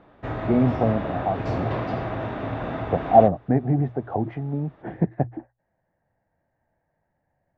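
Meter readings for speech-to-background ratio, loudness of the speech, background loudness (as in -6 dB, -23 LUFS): 6.5 dB, -23.5 LUFS, -30.0 LUFS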